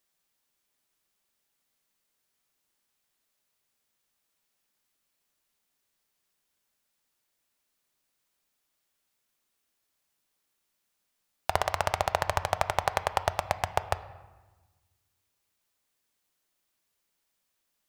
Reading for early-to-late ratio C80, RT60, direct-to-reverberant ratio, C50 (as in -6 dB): 16.0 dB, 1.3 s, 11.5 dB, 14.5 dB